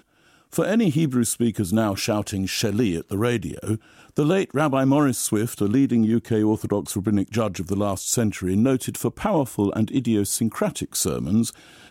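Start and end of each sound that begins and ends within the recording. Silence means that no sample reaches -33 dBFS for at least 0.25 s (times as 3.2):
0.53–3.77
4.17–11.53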